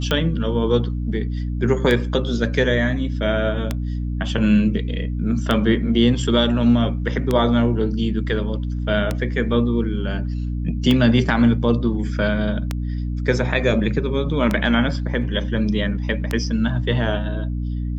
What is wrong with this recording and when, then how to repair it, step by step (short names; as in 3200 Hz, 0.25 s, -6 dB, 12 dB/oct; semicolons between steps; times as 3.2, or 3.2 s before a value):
hum 60 Hz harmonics 5 -24 dBFS
tick 33 1/3 rpm -7 dBFS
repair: de-click; de-hum 60 Hz, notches 5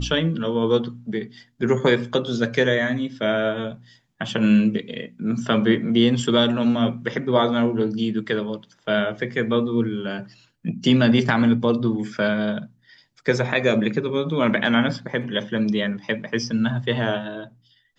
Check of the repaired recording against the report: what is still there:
none